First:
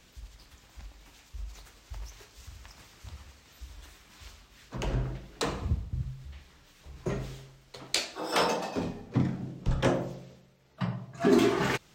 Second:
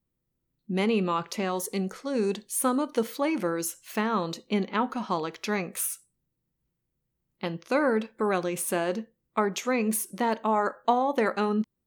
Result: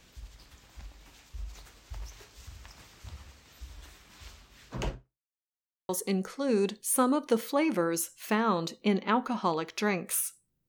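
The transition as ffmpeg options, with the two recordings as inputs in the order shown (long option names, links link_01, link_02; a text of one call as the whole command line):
ffmpeg -i cue0.wav -i cue1.wav -filter_complex "[0:a]apad=whole_dur=10.68,atrim=end=10.68,asplit=2[link_01][link_02];[link_01]atrim=end=5.32,asetpts=PTS-STARTPTS,afade=type=out:start_time=4.88:duration=0.44:curve=exp[link_03];[link_02]atrim=start=5.32:end=5.89,asetpts=PTS-STARTPTS,volume=0[link_04];[1:a]atrim=start=1.55:end=6.34,asetpts=PTS-STARTPTS,afade=type=in:duration=0.004:curve=hsin[link_05];[link_03][link_04][link_05]concat=n=3:v=0:a=1" out.wav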